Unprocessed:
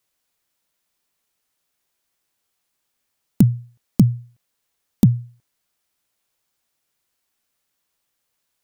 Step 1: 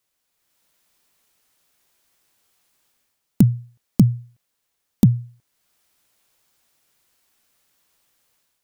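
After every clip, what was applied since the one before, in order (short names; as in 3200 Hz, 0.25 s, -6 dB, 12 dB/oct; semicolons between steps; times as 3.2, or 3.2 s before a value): AGC gain up to 9.5 dB; gain -1 dB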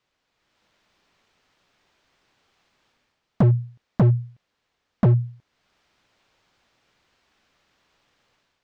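in parallel at +2.5 dB: limiter -12 dBFS, peak gain reduction 10 dB; on the sum: hard clip -13 dBFS, distortion -6 dB; air absorption 180 m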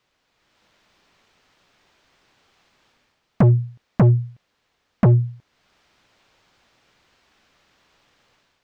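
soft clip -14.5 dBFS, distortion -20 dB; gain +5.5 dB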